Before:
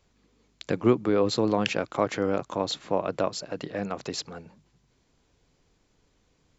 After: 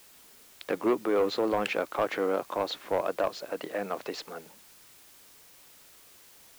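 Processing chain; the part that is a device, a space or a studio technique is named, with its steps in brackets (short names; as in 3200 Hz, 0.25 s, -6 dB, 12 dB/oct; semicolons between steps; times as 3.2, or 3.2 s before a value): tape answering machine (BPF 360–3000 Hz; soft clip -20 dBFS, distortion -13 dB; wow and flutter; white noise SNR 23 dB); gain +2 dB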